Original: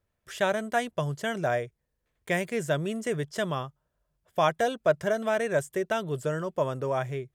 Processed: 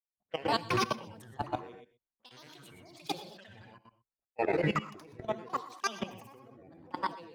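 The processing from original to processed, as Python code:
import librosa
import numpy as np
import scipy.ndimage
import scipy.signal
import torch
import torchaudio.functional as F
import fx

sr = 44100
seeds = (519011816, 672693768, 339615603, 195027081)

p1 = fx.env_flanger(x, sr, rest_ms=10.3, full_db=-26.0)
p2 = fx.over_compress(p1, sr, threshold_db=-36.0, ratio=-1.0)
p3 = p1 + (p2 * 10.0 ** (1.0 / 20.0))
p4 = fx.graphic_eq(p3, sr, hz=(125, 250, 500, 1000, 4000, 8000), db=(-7, 8, -3, 6, 4, -10))
p5 = fx.env_lowpass(p4, sr, base_hz=540.0, full_db=-24.5)
p6 = fx.granulator(p5, sr, seeds[0], grain_ms=100.0, per_s=20.0, spray_ms=100.0, spread_st=12)
p7 = fx.low_shelf(p6, sr, hz=480.0, db=-10.5)
p8 = p7 + 10.0 ** (-7.0 / 20.0) * np.pad(p7, (int(124 * sr / 1000.0), 0))[:len(p7)]
p9 = fx.rev_gated(p8, sr, seeds[1], gate_ms=140, shape='rising', drr_db=5.5)
p10 = fx.level_steps(p9, sr, step_db=14)
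p11 = fx.band_widen(p10, sr, depth_pct=100)
y = p11 * 10.0 ** (-2.0 / 20.0)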